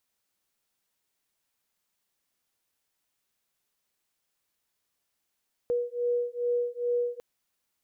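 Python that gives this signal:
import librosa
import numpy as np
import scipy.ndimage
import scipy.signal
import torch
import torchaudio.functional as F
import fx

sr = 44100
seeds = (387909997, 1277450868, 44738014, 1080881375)

y = fx.two_tone_beats(sr, length_s=1.5, hz=482.0, beat_hz=2.4, level_db=-29.0)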